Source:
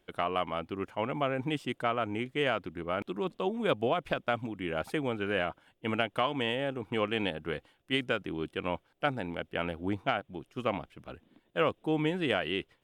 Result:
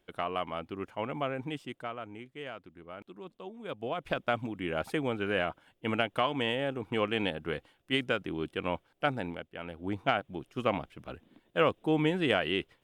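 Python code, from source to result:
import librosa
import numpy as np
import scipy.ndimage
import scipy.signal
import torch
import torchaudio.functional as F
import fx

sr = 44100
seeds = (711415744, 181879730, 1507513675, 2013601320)

y = fx.gain(x, sr, db=fx.line((1.26, -2.5), (2.29, -12.5), (3.64, -12.5), (4.17, 0.5), (9.28, 0.5), (9.52, -10.5), (10.09, 2.0)))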